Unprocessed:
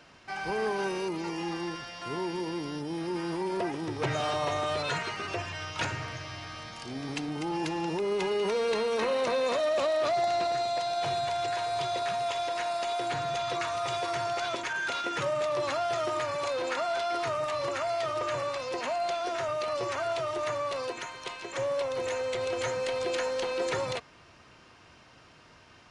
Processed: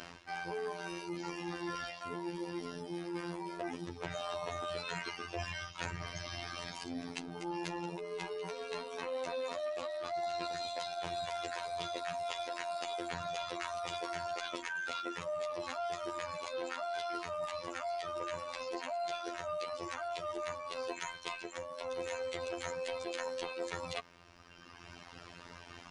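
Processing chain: reverb removal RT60 1.9 s; reverse; compression 6:1, threshold -46 dBFS, peak gain reduction 18.5 dB; reverse; robot voice 86.4 Hz; trim +9.5 dB

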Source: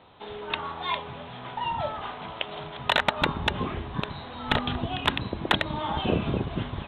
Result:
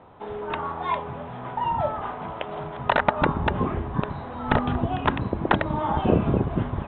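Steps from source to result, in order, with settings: low-pass 1.4 kHz 12 dB/octave; trim +5.5 dB

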